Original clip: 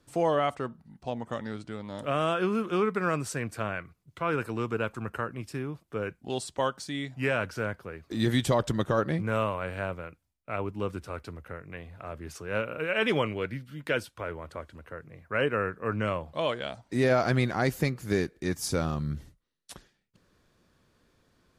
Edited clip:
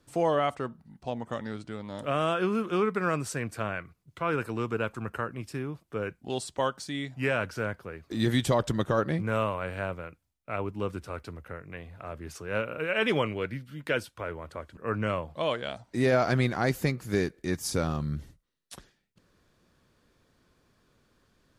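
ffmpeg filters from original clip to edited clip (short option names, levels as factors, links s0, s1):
-filter_complex "[0:a]asplit=2[s0][s1];[s0]atrim=end=14.772[s2];[s1]atrim=start=15.748[s3];[s2][s3]acrossfade=d=0.004:c1=hsin:c2=hsin"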